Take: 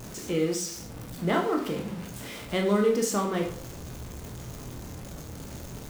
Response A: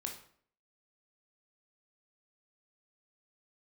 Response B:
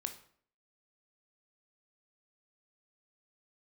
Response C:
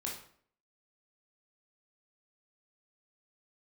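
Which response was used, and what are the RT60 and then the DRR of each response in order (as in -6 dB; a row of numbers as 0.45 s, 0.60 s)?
A; 0.55 s, 0.55 s, 0.55 s; 1.5 dB, 6.5 dB, -3.0 dB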